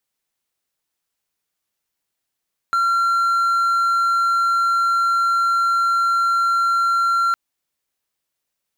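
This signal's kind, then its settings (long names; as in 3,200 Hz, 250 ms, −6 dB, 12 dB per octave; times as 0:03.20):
tone triangle 1,370 Hz −13 dBFS 4.61 s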